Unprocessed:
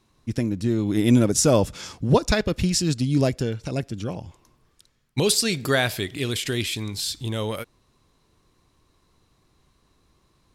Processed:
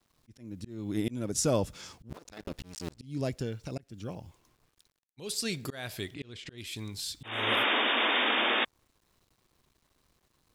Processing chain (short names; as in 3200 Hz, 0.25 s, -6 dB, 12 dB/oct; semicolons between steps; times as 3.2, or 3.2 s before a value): 2.09–2.98 cycle switcher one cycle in 2, muted; 7.23–8.65 painted sound noise 210–3700 Hz -18 dBFS; requantised 10-bit, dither none; 6.14–6.58 air absorption 110 m; auto swell 0.301 s; gain -9 dB